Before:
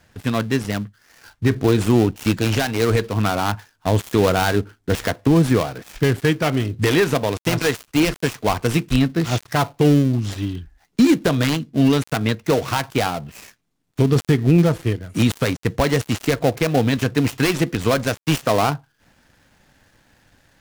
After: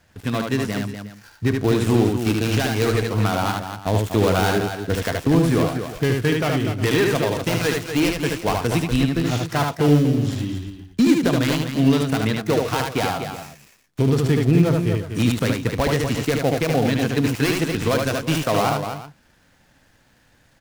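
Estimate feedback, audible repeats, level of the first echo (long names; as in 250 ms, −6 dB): repeats not evenly spaced, 3, −3.5 dB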